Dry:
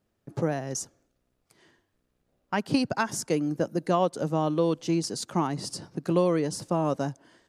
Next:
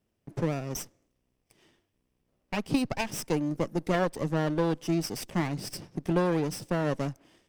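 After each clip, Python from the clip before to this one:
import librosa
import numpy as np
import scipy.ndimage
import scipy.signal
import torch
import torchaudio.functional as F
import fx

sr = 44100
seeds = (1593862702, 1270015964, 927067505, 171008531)

y = fx.lower_of_two(x, sr, delay_ms=0.36)
y = y * 10.0 ** (-1.5 / 20.0)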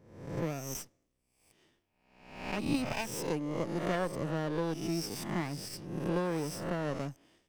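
y = fx.spec_swells(x, sr, rise_s=0.78)
y = y * 10.0 ** (-7.0 / 20.0)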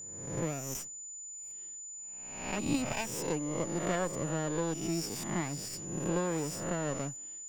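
y = x + 10.0 ** (-42.0 / 20.0) * np.sin(2.0 * np.pi * 7000.0 * np.arange(len(x)) / sr)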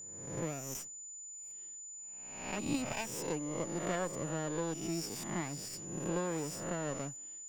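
y = fx.low_shelf(x, sr, hz=130.0, db=-3.5)
y = y * 10.0 ** (-3.0 / 20.0)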